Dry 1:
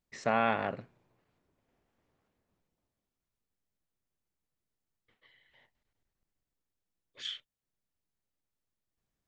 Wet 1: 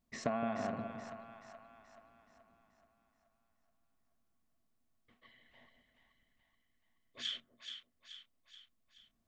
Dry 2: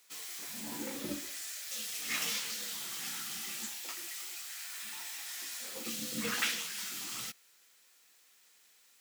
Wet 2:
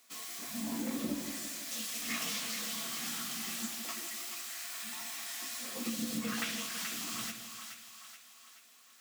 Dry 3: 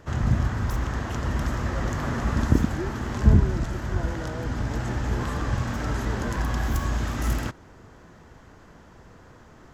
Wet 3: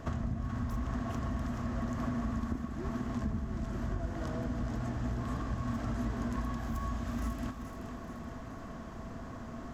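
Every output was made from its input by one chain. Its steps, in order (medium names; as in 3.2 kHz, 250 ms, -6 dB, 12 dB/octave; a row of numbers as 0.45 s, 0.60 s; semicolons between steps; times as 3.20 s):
bass shelf 120 Hz +5.5 dB; small resonant body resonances 240/670/1100 Hz, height 12 dB, ringing for 60 ms; compression 16:1, threshold -32 dBFS; two-band feedback delay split 750 Hz, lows 167 ms, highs 428 ms, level -7.5 dB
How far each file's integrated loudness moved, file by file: -9.0 LU, 0.0 LU, -10.5 LU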